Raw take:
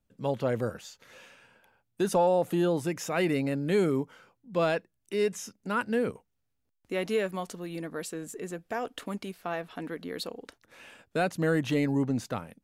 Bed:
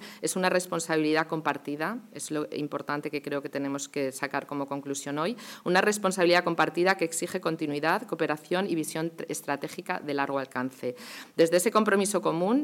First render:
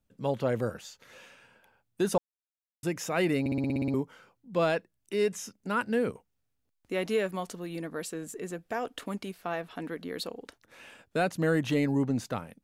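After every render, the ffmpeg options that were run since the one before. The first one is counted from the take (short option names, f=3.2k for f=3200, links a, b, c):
-filter_complex "[0:a]asplit=12[a][b][c][d][e][f][g][h][i][j][k][l];[a]atrim=end=2.18,asetpts=PTS-STARTPTS,afade=t=out:st=2.176:d=0.004:c=hsin[m];[b]atrim=start=2.18:end=2.83,asetpts=PTS-STARTPTS,volume=0[n];[c]atrim=start=2.83:end=3.462,asetpts=PTS-STARTPTS,afade=t=in:d=0.004:c=hsin[o];[d]atrim=start=3.398:end=3.462[p];[e]atrim=start=3.398:end=3.462[q];[f]atrim=start=3.398:end=3.462[r];[g]atrim=start=3.398:end=3.462[s];[h]atrim=start=3.398:end=3.462[t];[i]atrim=start=3.398:end=3.462[u];[j]atrim=start=3.398:end=3.462[v];[k]atrim=start=3.398:end=3.462[w];[l]atrim=start=3.938[x];[m][n][o]concat=n=3:v=0:a=1[y];[y][p]acrossfade=d=0.004:c1=hsin:c2=hsin[z];[z][q]acrossfade=d=0.004:c1=hsin:c2=hsin[aa];[aa][r]acrossfade=d=0.004:c1=hsin:c2=hsin[ab];[ab][s]acrossfade=d=0.004:c1=hsin:c2=hsin[ac];[ac][t]acrossfade=d=0.004:c1=hsin:c2=hsin[ad];[ad][u]acrossfade=d=0.004:c1=hsin:c2=hsin[ae];[ae][v]acrossfade=d=0.004:c1=hsin:c2=hsin[af];[af][w]acrossfade=d=0.004:c1=hsin:c2=hsin[ag];[ag][x]acrossfade=d=0.004:c1=hsin:c2=hsin"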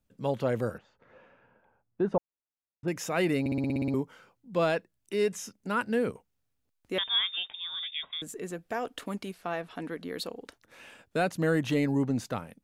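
-filter_complex "[0:a]asettb=1/sr,asplit=3[a][b][c];[a]atrim=end=0.784[d];[b]atrim=start=0.78:end=2.88,asetpts=PTS-STARTPTS,afade=t=in:d=0.004:c=qsin,afade=t=out:st=2.096:d=0.004:c=qsin,lowpass=1.2k[e];[c]atrim=start=2.876[f];[d][e]acrossfade=d=0.004:c1=hsin:c2=qsin[g];[g][f]acrossfade=d=0.004:c1=qsin:c2=hsin,asettb=1/sr,asplit=3[h][i][j];[h]atrim=end=6.984[k];[i]atrim=start=6.98:end=8.22,asetpts=PTS-STARTPTS,afade=t=in:d=0.004:c=qsin,afade=t=out:st=1.236:d=0.004:c=qsin,lowpass=f=3.2k:t=q:w=0.5098,lowpass=f=3.2k:t=q:w=0.6013,lowpass=f=3.2k:t=q:w=0.9,lowpass=f=3.2k:t=q:w=2.563,afreqshift=-3800[l];[j]atrim=start=8.216[m];[k][l]acrossfade=d=0.004:c1=hsin:c2=qsin[n];[n][m]acrossfade=d=0.004:c1=qsin:c2=hsin,asettb=1/sr,asplit=3[o][p][q];[o]atrim=end=9.334[r];[p]atrim=start=9.33:end=10.04,asetpts=PTS-STARTPTS,afade=t=in:d=0.004:c=qsin,afade=t=out:st=0.706:d=0.004:c=qsin,lowpass=f=12k:w=0.5412,lowpass=f=12k:w=1.3066[s];[q]atrim=start=10.036[t];[r][s]acrossfade=d=0.004:c1=hsin:c2=qsin[u];[u][t]acrossfade=d=0.004:c1=qsin:c2=hsin"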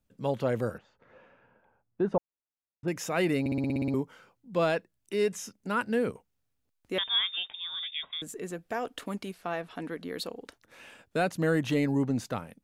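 -af anull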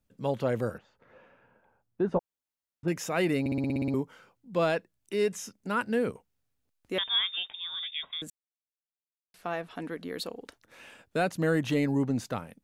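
-filter_complex "[0:a]asettb=1/sr,asplit=3[a][b][c];[a]atrim=end=2.084[d];[b]atrim=start=2.08:end=2.97,asetpts=PTS-STARTPTS,afade=t=in:d=0.004:c=qsin,afade=t=out:st=0.886:d=0.004:c=qsin,asplit=2[e][f];[f]adelay=12,volume=-6dB[g];[e][g]amix=inputs=2:normalize=0,atrim=end_sample=39249[h];[c]atrim=start=2.966[i];[d][h]acrossfade=d=0.004:c1=hsin:c2=qsin[j];[j][i]acrossfade=d=0.004:c1=qsin:c2=hsin,asplit=3[k][l][m];[k]atrim=end=8.3,asetpts=PTS-STARTPTS,afade=t=out:st=8.296:d=0.004:c=hsin[n];[l]atrim=start=8.3:end=9.34,asetpts=PTS-STARTPTS,volume=0[o];[m]atrim=start=9.34,asetpts=PTS-STARTPTS,afade=t=in:d=0.004:c=hsin[p];[n][o][p]concat=n=3:v=0:a=1"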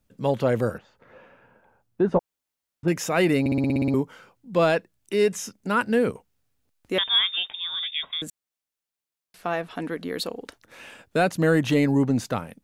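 -af "acontrast=64"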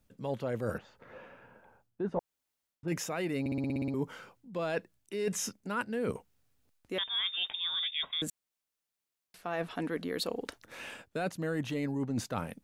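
-af "alimiter=limit=-13dB:level=0:latency=1:release=263,areverse,acompressor=threshold=-30dB:ratio=12,areverse"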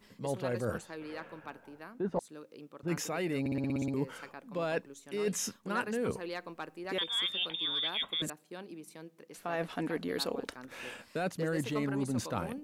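-filter_complex "[1:a]volume=-18dB[a];[0:a][a]amix=inputs=2:normalize=0"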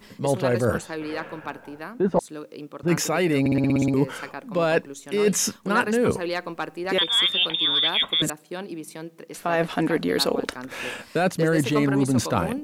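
-af "volume=12dB"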